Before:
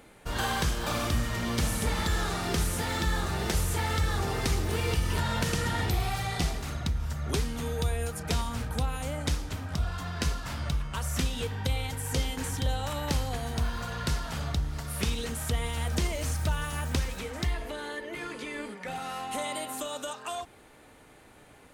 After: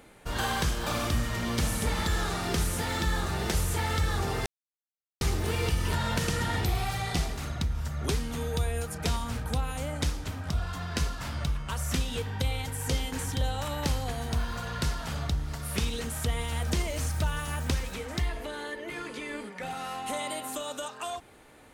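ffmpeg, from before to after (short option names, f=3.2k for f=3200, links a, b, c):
-filter_complex "[0:a]asplit=2[a][b];[a]atrim=end=4.46,asetpts=PTS-STARTPTS,afade=t=out:st=4.456:d=0.004:c=hsin,apad=pad_dur=0.75[c];[b]atrim=start=4.46,asetpts=PTS-STARTPTS,afade=t=in:d=0.004:c=hsin[d];[c][d]concat=n=2:v=0:a=1"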